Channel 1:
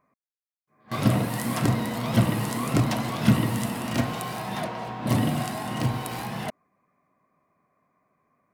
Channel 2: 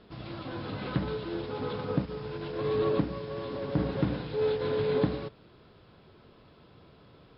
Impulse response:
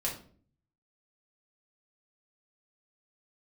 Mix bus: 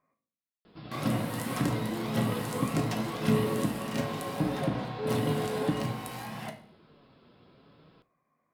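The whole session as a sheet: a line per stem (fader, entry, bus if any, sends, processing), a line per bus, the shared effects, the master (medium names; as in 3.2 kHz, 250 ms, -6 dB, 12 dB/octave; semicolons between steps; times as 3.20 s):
-5.0 dB, 0.00 s, send -5.5 dB, feedback comb 54 Hz, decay 0.49 s, harmonics all, mix 60%
+0.5 dB, 0.65 s, send -18 dB, peaking EQ 210 Hz +5 dB; flange 0.82 Hz, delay 5.9 ms, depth 2.6 ms, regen +64%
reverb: on, RT60 0.50 s, pre-delay 4 ms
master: bass shelf 130 Hz -6.5 dB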